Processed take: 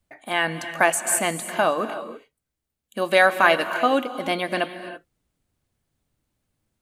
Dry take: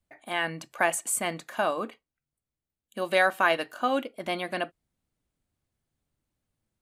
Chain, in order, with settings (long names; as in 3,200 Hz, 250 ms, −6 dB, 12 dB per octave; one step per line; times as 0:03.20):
reverb whose tail is shaped and stops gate 350 ms rising, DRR 10.5 dB
level +6 dB